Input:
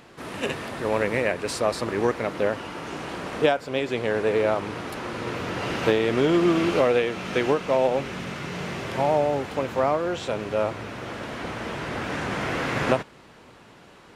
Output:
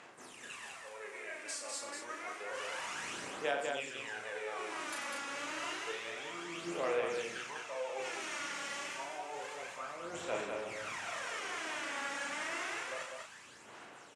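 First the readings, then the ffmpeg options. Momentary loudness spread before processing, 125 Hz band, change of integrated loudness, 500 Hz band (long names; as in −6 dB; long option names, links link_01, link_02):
12 LU, −28.0 dB, −14.0 dB, −17.5 dB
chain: -filter_complex "[0:a]equalizer=frequency=4300:width=0.97:gain=-11.5,areverse,acompressor=threshold=-39dB:ratio=4,areverse,aderivative,aphaser=in_gain=1:out_gain=1:delay=3.6:decay=0.74:speed=0.29:type=sinusoidal,asplit=2[link_01][link_02];[link_02]adelay=35,volume=-4dB[link_03];[link_01][link_03]amix=inputs=2:normalize=0,dynaudnorm=framelen=480:gausssize=7:maxgain=8dB,lowpass=frequency=7900:width=0.5412,lowpass=frequency=7900:width=1.3066,asplit=2[link_04][link_05];[link_05]aecho=0:1:90.38|198.3:0.355|0.631[link_06];[link_04][link_06]amix=inputs=2:normalize=0,volume=4dB"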